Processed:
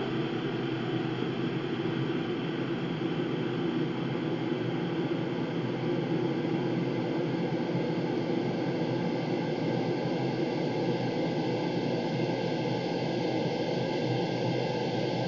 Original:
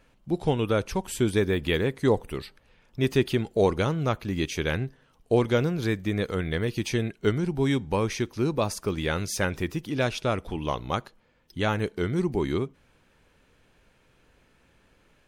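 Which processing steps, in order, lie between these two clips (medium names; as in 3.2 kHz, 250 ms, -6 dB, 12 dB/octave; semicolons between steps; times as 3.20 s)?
frequency axis rescaled in octaves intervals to 80%; reverb removal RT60 1.5 s; Paulstretch 39×, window 1.00 s, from 8.23 s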